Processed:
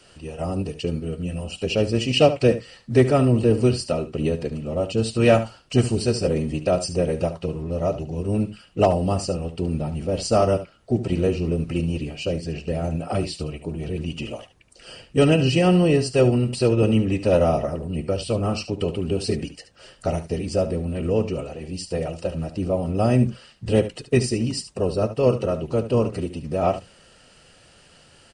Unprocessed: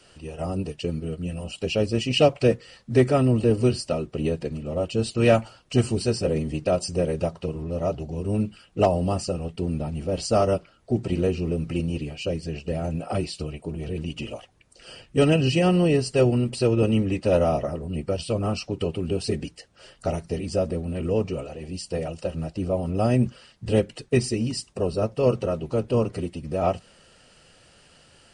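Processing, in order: delay 72 ms -12.5 dB; trim +2 dB

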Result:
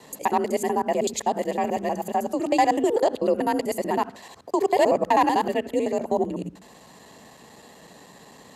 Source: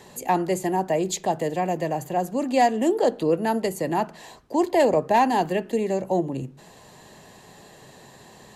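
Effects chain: time reversed locally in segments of 63 ms; frequency shift +43 Hz

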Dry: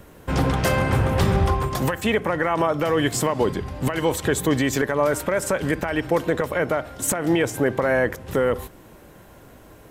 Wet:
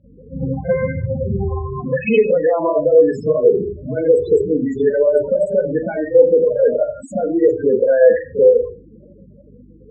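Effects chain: spectral contrast enhancement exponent 2.8; hum 50 Hz, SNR 19 dB; resonant high shelf 1.6 kHz +12.5 dB, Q 1.5; reverberation RT60 0.45 s, pre-delay 37 ms, DRR -12.5 dB; loudest bins only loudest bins 16; cabinet simulation 120–4400 Hz, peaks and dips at 120 Hz -5 dB, 280 Hz -7 dB, 420 Hz +7 dB, 610 Hz +5 dB, 1.2 kHz -9 dB, 1.9 kHz -6 dB; trim -7.5 dB

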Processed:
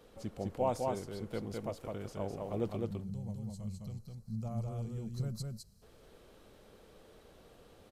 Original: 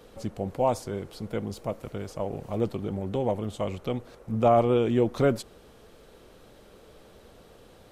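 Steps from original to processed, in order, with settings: time-frequency box 2.83–5.82 s, 230–3900 Hz -20 dB; delay 207 ms -3 dB; trim -8 dB

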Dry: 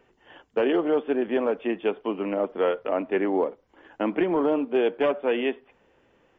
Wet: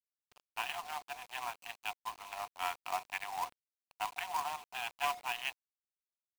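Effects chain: local Wiener filter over 25 samples; rippled Chebyshev high-pass 700 Hz, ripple 9 dB; companded quantiser 4-bit; trim +1.5 dB

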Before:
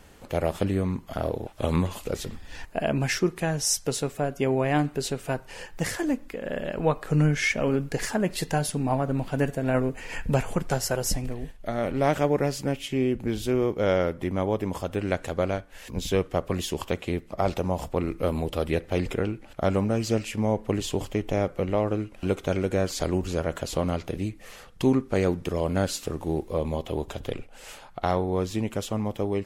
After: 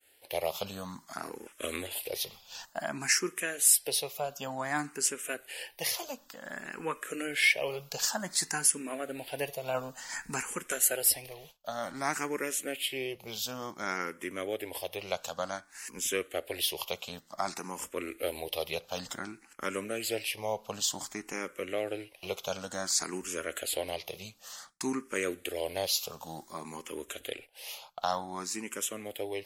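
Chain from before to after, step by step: tilt EQ +3.5 dB/octave; expander -43 dBFS; bass shelf 180 Hz -8.5 dB; barber-pole phaser +0.55 Hz; trim -1.5 dB

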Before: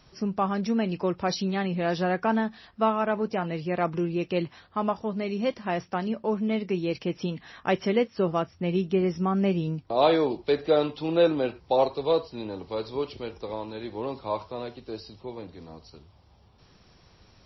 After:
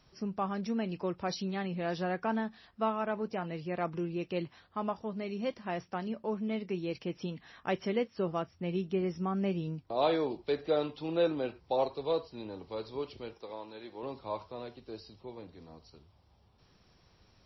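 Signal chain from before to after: 13.33–14.03 s: high-pass 360 Hz 6 dB/octave; trim -7.5 dB

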